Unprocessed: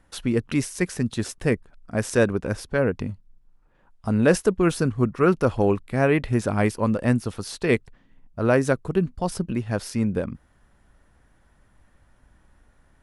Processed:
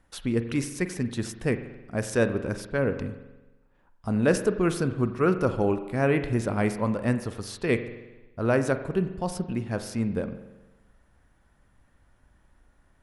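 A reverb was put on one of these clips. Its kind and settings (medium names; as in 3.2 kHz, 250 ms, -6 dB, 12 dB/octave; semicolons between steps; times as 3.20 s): spring tank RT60 1.1 s, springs 43 ms, chirp 35 ms, DRR 9.5 dB; trim -4 dB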